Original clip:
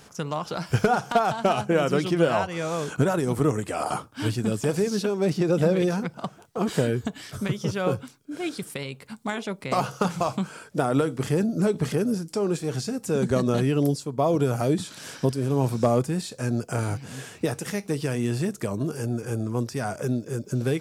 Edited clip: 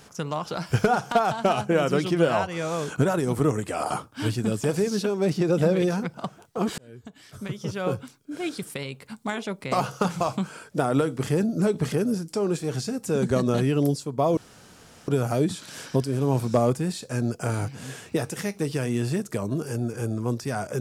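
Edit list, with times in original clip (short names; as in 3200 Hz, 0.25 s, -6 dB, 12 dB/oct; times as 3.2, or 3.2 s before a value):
6.78–8.16 fade in
14.37 insert room tone 0.71 s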